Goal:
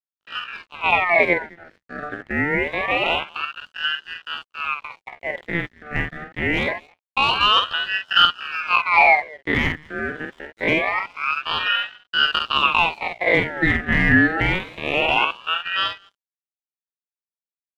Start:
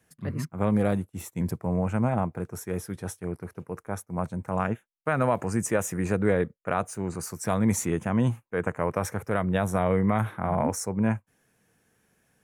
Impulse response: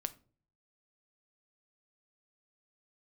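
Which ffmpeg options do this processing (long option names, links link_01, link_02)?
-filter_complex "[0:a]asetrate=74167,aresample=44100,atempo=0.594604,asplit=2[link_01][link_02];[link_02]adelay=150,highpass=300,lowpass=3400,asoftclip=type=hard:threshold=-18.5dB,volume=-21dB[link_03];[link_01][link_03]amix=inputs=2:normalize=0,highpass=frequency=390:width_type=q:width=0.5412,highpass=frequency=390:width_type=q:width=1.307,lowpass=frequency=3000:width_type=q:width=0.5176,lowpass=frequency=3000:width_type=q:width=0.7071,lowpass=frequency=3000:width_type=q:width=1.932,afreqshift=-71,volume=18dB,asoftclip=hard,volume=-18dB,asplit=2[link_04][link_05];[link_05]adelay=35,volume=-4.5dB[link_06];[link_04][link_06]amix=inputs=2:normalize=0,atempo=0.7,acontrast=66,aeval=exprs='sgn(val(0))*max(abs(val(0))-0.00631,0)':channel_layout=same,equalizer=frequency=820:width=1.3:gain=13.5,aeval=exprs='val(0)*sin(2*PI*1600*n/s+1600*0.4/0.25*sin(2*PI*0.25*n/s))':channel_layout=same,volume=-4dB"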